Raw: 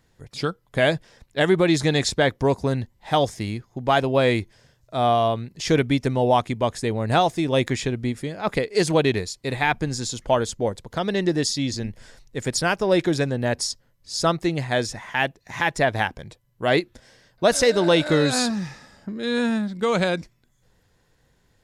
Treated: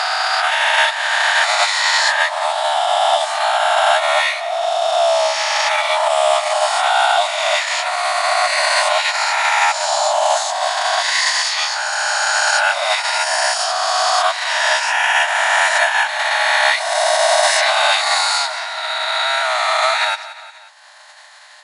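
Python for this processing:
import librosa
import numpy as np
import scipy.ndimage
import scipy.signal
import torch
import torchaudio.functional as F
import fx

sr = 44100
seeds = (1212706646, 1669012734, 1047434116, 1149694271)

p1 = fx.spec_swells(x, sr, rise_s=2.95)
p2 = fx.peak_eq(p1, sr, hz=4200.0, db=7.0, octaves=0.24)
p3 = fx.sample_hold(p2, sr, seeds[0], rate_hz=8400.0, jitter_pct=0)
p4 = p2 + (p3 * librosa.db_to_amplitude(-8.0))
p5 = fx.pitch_keep_formants(p4, sr, semitones=-10.0)
p6 = fx.brickwall_bandpass(p5, sr, low_hz=590.0, high_hz=11000.0)
p7 = p6 + fx.echo_feedback(p6, sr, ms=178, feedback_pct=37, wet_db=-18.5, dry=0)
p8 = fx.band_squash(p7, sr, depth_pct=70)
y = p8 * librosa.db_to_amplitude(1.5)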